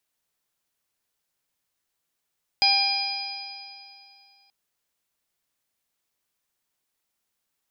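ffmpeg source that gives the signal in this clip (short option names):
-f lavfi -i "aevalsrc='0.0708*pow(10,-3*t/2.56)*sin(2*PI*796.8*t)+0.00794*pow(10,-3*t/2.56)*sin(2*PI*1598.36*t)+0.0668*pow(10,-3*t/2.56)*sin(2*PI*2409.4*t)+0.0237*pow(10,-3*t/2.56)*sin(2*PI*3234.54*t)+0.0376*pow(10,-3*t/2.56)*sin(2*PI*4078.29*t)+0.141*pow(10,-3*t/2.56)*sin(2*PI*4944.95*t)':d=1.88:s=44100"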